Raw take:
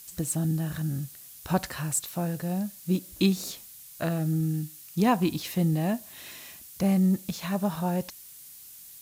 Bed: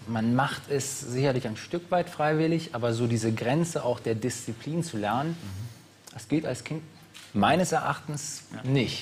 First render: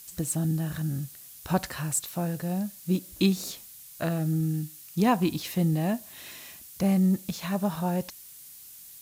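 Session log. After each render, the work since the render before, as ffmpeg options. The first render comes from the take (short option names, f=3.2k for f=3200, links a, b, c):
-af anull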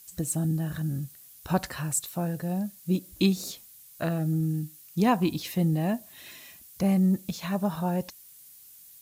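-af "afftdn=nr=6:nf=-48"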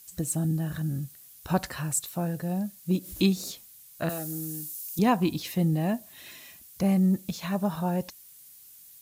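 -filter_complex "[0:a]asettb=1/sr,asplit=3[a][b][c];[a]atrim=end=2.914[d];[b]atrim=start=2.91:end=3.36,asetpts=PTS-STARTPTS,afade=t=in:d=0.004:c=qsin,afade=t=out:st=0.446:d=0.004:c=qsin,acompressor=mode=upward:threshold=-30dB:ratio=2.5:attack=3.2:release=140:knee=2.83:detection=peak[e];[c]atrim=start=3.356[f];[d][e]acrossfade=d=0.004:c1=hsin:c2=qsin[g];[g][f]acrossfade=d=0.004:c1=qsin:c2=hsin,asettb=1/sr,asplit=3[h][i][j];[h]atrim=end=4.094[k];[i]atrim=start=4.09:end=4.99,asetpts=PTS-STARTPTS,afade=t=in:d=0.004:c=qsin,afade=t=out:st=0.896:d=0.004:c=qsin,bass=f=250:g=-15,treble=f=4k:g=13[l];[j]atrim=start=4.986[m];[k][l]acrossfade=d=0.004:c1=hsin:c2=qsin[n];[n][m]acrossfade=d=0.004:c1=qsin:c2=hsin"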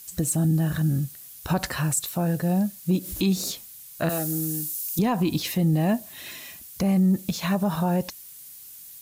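-af "acontrast=82,alimiter=limit=-14.5dB:level=0:latency=1:release=61"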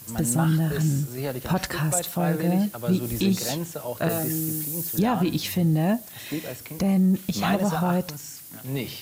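-filter_complex "[1:a]volume=-5dB[a];[0:a][a]amix=inputs=2:normalize=0"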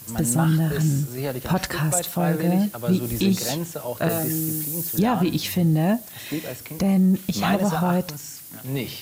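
-af "volume=2dB"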